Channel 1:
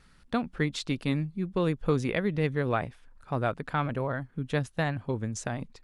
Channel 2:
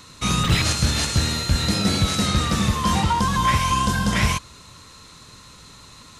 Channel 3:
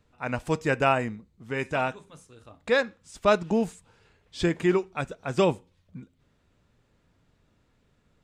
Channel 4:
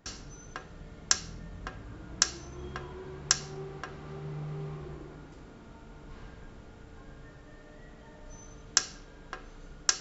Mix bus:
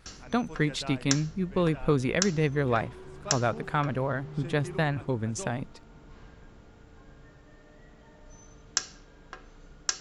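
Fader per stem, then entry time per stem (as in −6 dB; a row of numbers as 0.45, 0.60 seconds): +1.5 dB, muted, −19.0 dB, −3.0 dB; 0.00 s, muted, 0.00 s, 0.00 s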